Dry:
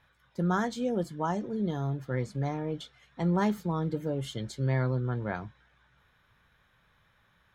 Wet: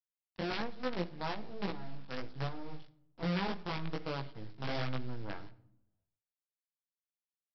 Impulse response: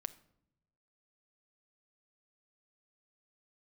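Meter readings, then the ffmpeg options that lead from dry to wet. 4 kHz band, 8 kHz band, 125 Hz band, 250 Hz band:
+1.5 dB, below −15 dB, −11.0 dB, −9.5 dB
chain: -filter_complex "[0:a]acrossover=split=150|2000[link_01][link_02][link_03];[link_02]aeval=exprs='(mod(7.5*val(0)+1,2)-1)/7.5':channel_layout=same[link_04];[link_03]acompressor=threshold=-55dB:ratio=16[link_05];[link_01][link_04][link_05]amix=inputs=3:normalize=0,aeval=exprs='val(0)+0.00112*(sin(2*PI*50*n/s)+sin(2*PI*2*50*n/s)/2+sin(2*PI*3*50*n/s)/3+sin(2*PI*4*50*n/s)/4+sin(2*PI*5*50*n/s)/5)':channel_layout=same,aresample=11025,acrusher=bits=5:dc=4:mix=0:aa=0.000001,aresample=44100,flanger=delay=15.5:depth=4.7:speed=1.2[link_06];[1:a]atrim=start_sample=2205[link_07];[link_06][link_07]afir=irnorm=-1:irlink=0,volume=-3dB"

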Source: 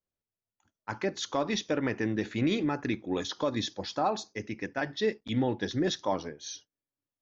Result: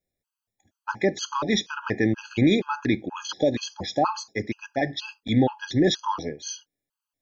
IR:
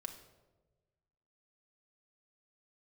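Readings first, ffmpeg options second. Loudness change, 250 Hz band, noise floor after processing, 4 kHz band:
+5.5 dB, +6.5 dB, below −85 dBFS, +5.5 dB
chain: -af "afftfilt=real='re*gt(sin(2*PI*2.1*pts/sr)*(1-2*mod(floor(b*sr/1024/830),2)),0)':imag='im*gt(sin(2*PI*2.1*pts/sr)*(1-2*mod(floor(b*sr/1024/830),2)),0)':win_size=1024:overlap=0.75,volume=8.5dB"

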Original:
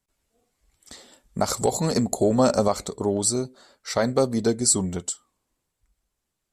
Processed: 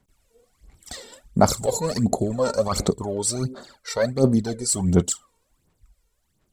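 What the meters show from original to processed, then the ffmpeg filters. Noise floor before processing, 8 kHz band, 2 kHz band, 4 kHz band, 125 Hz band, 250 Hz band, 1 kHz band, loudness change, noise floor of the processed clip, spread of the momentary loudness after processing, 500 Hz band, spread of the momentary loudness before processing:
−81 dBFS, −1.5 dB, +1.0 dB, 0.0 dB, +4.5 dB, +1.5 dB, +0.5 dB, 0.0 dB, −71 dBFS, 15 LU, 0.0 dB, 12 LU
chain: -af "equalizer=frequency=160:width=0.51:gain=3.5,areverse,acompressor=threshold=-26dB:ratio=6,areverse,aphaser=in_gain=1:out_gain=1:delay=2.2:decay=0.72:speed=1.4:type=sinusoidal,volume=3.5dB"

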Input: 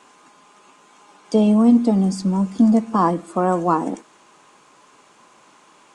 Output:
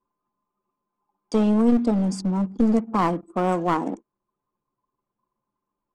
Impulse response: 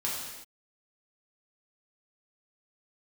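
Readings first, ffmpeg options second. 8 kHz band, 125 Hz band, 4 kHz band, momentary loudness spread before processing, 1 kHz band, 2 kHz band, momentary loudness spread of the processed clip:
−5.0 dB, −4.0 dB, can't be measured, 8 LU, −4.0 dB, 0.0 dB, 7 LU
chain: -af "anlmdn=6.31,aeval=exprs='clip(val(0),-1,0.133)':channel_layout=same,volume=-3dB"

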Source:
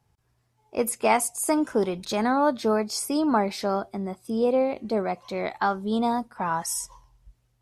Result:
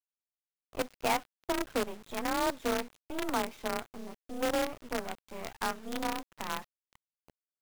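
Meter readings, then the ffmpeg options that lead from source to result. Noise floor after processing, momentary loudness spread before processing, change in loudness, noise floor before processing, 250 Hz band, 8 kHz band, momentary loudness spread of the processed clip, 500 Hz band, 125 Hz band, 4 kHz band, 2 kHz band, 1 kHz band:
below −85 dBFS, 8 LU, −9.0 dB, −70 dBFS, −11.5 dB, −12.0 dB, 12 LU, −10.0 dB, −12.5 dB, −3.0 dB, −4.0 dB, −9.0 dB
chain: -af "aresample=8000,aresample=44100,afreqshift=31,acrusher=bits=4:dc=4:mix=0:aa=0.000001,volume=-9dB"

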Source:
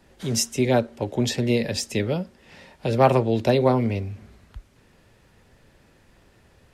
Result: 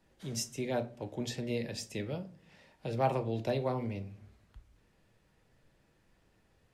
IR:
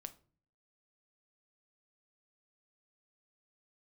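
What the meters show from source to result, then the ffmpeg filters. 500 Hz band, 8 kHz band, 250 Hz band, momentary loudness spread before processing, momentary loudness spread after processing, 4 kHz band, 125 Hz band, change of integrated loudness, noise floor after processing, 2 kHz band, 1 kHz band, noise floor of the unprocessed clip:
−13.0 dB, −13.0 dB, −14.0 dB, 12 LU, 12 LU, −13.0 dB, −12.5 dB, −13.0 dB, −70 dBFS, −13.0 dB, −12.0 dB, −58 dBFS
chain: -filter_complex "[1:a]atrim=start_sample=2205[link_01];[0:a][link_01]afir=irnorm=-1:irlink=0,volume=-8dB"

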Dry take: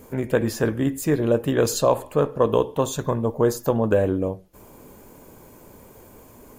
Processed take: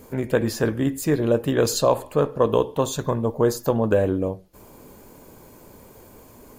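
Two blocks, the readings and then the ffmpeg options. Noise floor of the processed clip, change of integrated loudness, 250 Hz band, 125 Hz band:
−48 dBFS, 0.0 dB, 0.0 dB, 0.0 dB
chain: -af "equalizer=frequency=4400:width=2.8:gain=4"

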